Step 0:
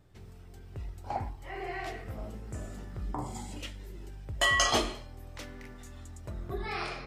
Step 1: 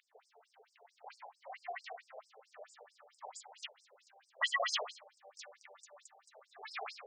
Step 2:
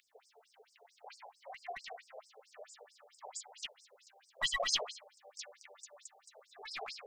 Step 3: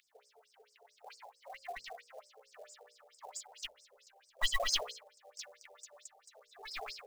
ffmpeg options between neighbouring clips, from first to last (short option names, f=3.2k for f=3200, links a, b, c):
-filter_complex "[0:a]aeval=exprs='val(0)+0.00631*(sin(2*PI*50*n/s)+sin(2*PI*2*50*n/s)/2+sin(2*PI*3*50*n/s)/3+sin(2*PI*4*50*n/s)/4+sin(2*PI*5*50*n/s)/5)':c=same,acrossover=split=180|1100[a][b][c];[b]acompressor=mode=upward:threshold=-43dB:ratio=2.5[d];[a][d][c]amix=inputs=3:normalize=0,afftfilt=real='re*between(b*sr/1024,570*pow(6800/570,0.5+0.5*sin(2*PI*4.5*pts/sr))/1.41,570*pow(6800/570,0.5+0.5*sin(2*PI*4.5*pts/sr))*1.41)':imag='im*between(b*sr/1024,570*pow(6800/570,0.5+0.5*sin(2*PI*4.5*pts/sr))/1.41,570*pow(6800/570,0.5+0.5*sin(2*PI*4.5*pts/sr))*1.41)':win_size=1024:overlap=0.75"
-filter_complex "[0:a]equalizer=f=1.1k:w=0.48:g=-10,acrossover=split=1100|2500|3200[a][b][c][d];[b]aeval=exprs='clip(val(0),-1,0.0015)':c=same[e];[a][e][c][d]amix=inputs=4:normalize=0,volume=7.5dB"
-af "bandreject=f=60:t=h:w=6,bandreject=f=120:t=h:w=6,bandreject=f=180:t=h:w=6,bandreject=f=240:t=h:w=6,bandreject=f=300:t=h:w=6,bandreject=f=360:t=h:w=6,bandreject=f=420:t=h:w=6,bandreject=f=480:t=h:w=6,bandreject=f=540:t=h:w=6,bandreject=f=600:t=h:w=6,asubboost=boost=6:cutoff=51,acrusher=bits=5:mode=log:mix=0:aa=0.000001"